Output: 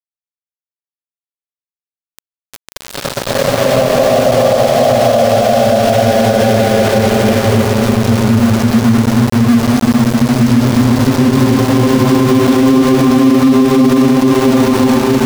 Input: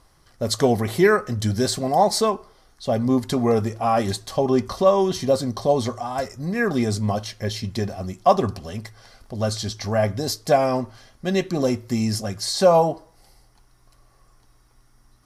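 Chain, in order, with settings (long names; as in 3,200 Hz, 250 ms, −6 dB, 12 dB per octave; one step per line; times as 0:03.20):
variable-slope delta modulation 32 kbit/s
low-shelf EQ 240 Hz −3 dB
mains-hum notches 50/100/150/200/250/300/350/400 Hz
in parallel at +2.5 dB: output level in coarse steps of 9 dB
on the sum: extreme stretch with random phases 38×, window 0.10 s, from 0:02.78
centre clipping without the shift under −22 dBFS
boost into a limiter +11.5 dB
level −1 dB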